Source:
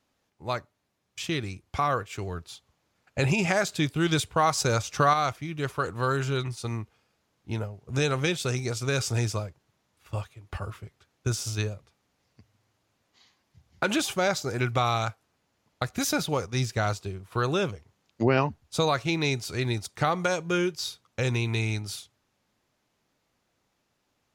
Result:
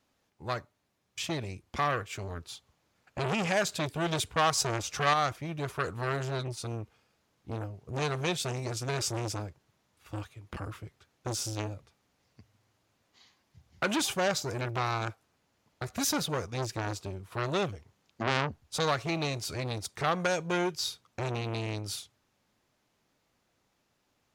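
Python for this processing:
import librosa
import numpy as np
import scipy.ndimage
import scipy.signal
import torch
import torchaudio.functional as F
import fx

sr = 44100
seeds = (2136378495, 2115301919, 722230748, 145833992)

y = fx.transformer_sat(x, sr, knee_hz=2100.0)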